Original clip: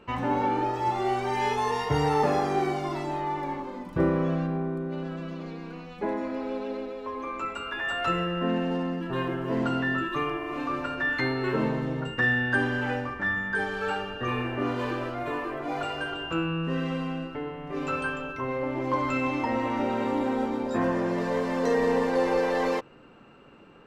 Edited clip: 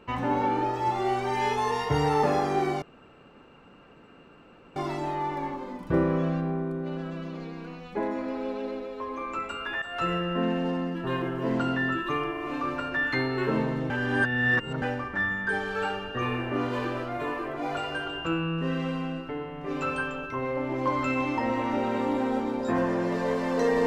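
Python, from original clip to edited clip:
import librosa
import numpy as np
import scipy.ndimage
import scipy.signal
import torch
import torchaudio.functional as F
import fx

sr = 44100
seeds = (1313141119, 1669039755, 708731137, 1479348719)

y = fx.edit(x, sr, fx.insert_room_tone(at_s=2.82, length_s=1.94),
    fx.fade_in_from(start_s=7.88, length_s=0.29, floor_db=-12.5),
    fx.reverse_span(start_s=11.96, length_s=0.92), tone=tone)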